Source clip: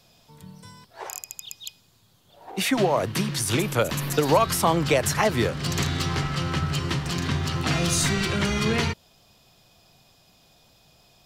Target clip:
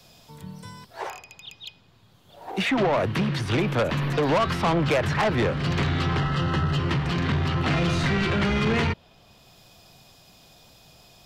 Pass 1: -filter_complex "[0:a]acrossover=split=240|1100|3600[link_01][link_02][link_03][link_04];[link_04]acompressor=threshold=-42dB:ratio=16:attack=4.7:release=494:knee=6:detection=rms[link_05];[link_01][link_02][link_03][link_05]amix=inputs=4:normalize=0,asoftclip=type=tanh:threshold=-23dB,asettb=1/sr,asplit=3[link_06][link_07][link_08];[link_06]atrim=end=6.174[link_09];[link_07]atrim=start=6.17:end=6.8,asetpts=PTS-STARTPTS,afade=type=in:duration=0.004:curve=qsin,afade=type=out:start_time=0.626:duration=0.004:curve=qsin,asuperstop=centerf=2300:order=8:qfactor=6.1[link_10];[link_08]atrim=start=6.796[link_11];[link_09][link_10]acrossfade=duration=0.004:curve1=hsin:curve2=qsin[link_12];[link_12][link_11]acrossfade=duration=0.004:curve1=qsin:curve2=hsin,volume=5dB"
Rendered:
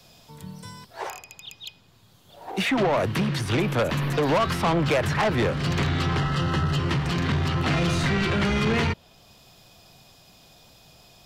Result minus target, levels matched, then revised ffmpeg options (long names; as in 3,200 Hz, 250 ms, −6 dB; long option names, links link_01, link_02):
downward compressor: peak gain reduction −8.5 dB
-filter_complex "[0:a]acrossover=split=240|1100|3600[link_01][link_02][link_03][link_04];[link_04]acompressor=threshold=-51dB:ratio=16:attack=4.7:release=494:knee=6:detection=rms[link_05];[link_01][link_02][link_03][link_05]amix=inputs=4:normalize=0,asoftclip=type=tanh:threshold=-23dB,asettb=1/sr,asplit=3[link_06][link_07][link_08];[link_06]atrim=end=6.174[link_09];[link_07]atrim=start=6.17:end=6.8,asetpts=PTS-STARTPTS,afade=type=in:duration=0.004:curve=qsin,afade=type=out:start_time=0.626:duration=0.004:curve=qsin,asuperstop=centerf=2300:order=8:qfactor=6.1[link_10];[link_08]atrim=start=6.796[link_11];[link_09][link_10]acrossfade=duration=0.004:curve1=hsin:curve2=qsin[link_12];[link_12][link_11]acrossfade=duration=0.004:curve1=qsin:curve2=hsin,volume=5dB"